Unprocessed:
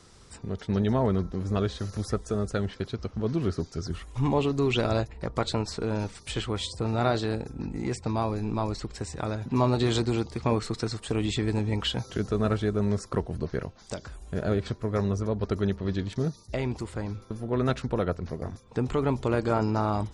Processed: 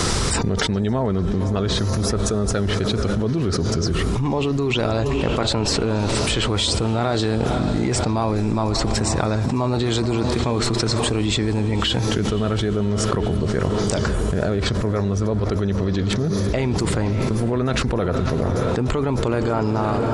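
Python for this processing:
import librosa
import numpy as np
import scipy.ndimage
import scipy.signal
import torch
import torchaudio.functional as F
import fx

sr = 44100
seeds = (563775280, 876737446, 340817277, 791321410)

y = fx.fade_out_tail(x, sr, length_s=1.31)
y = fx.echo_diffused(y, sr, ms=537, feedback_pct=52, wet_db=-14)
y = fx.env_flatten(y, sr, amount_pct=100)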